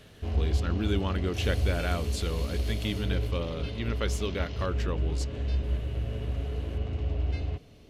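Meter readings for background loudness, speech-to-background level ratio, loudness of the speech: -32.0 LUFS, -2.0 dB, -34.0 LUFS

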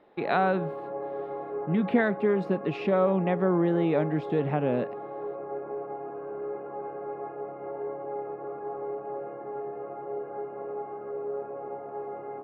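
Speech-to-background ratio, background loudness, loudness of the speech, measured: 10.0 dB, -36.5 LUFS, -26.5 LUFS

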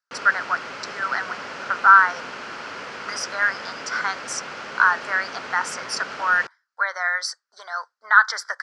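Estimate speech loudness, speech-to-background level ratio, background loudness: -21.0 LUFS, 13.0 dB, -34.0 LUFS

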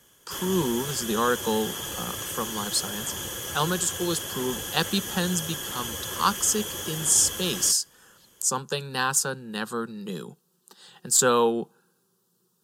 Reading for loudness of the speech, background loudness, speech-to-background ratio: -25.5 LUFS, -32.0 LUFS, 6.5 dB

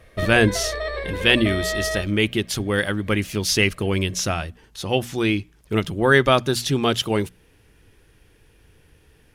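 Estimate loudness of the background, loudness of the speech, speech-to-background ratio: -28.0 LUFS, -21.0 LUFS, 7.0 dB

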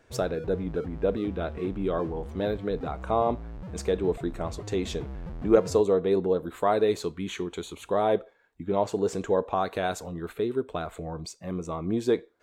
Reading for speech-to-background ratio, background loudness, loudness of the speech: 12.0 dB, -40.5 LUFS, -28.5 LUFS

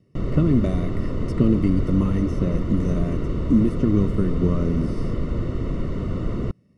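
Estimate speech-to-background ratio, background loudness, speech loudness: 4.5 dB, -27.5 LUFS, -23.0 LUFS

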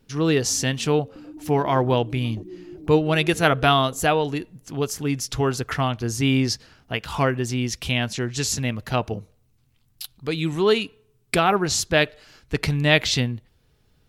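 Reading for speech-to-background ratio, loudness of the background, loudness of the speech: 19.0 dB, -41.5 LUFS, -22.5 LUFS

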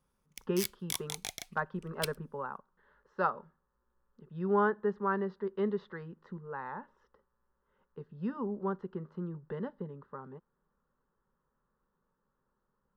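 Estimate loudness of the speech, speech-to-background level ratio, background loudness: -36.0 LUFS, 3.5 dB, -39.5 LUFS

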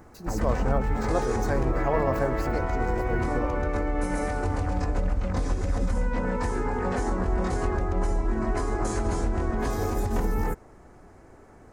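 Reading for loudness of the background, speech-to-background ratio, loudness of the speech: -28.5 LUFS, -3.0 dB, -31.5 LUFS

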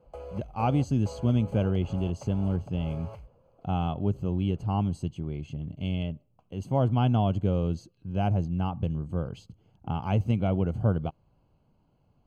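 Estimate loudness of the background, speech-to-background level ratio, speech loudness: -44.5 LUFS, 15.5 dB, -29.0 LUFS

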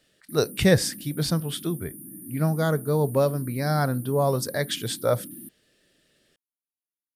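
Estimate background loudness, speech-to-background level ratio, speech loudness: -40.0 LUFS, 14.5 dB, -25.5 LUFS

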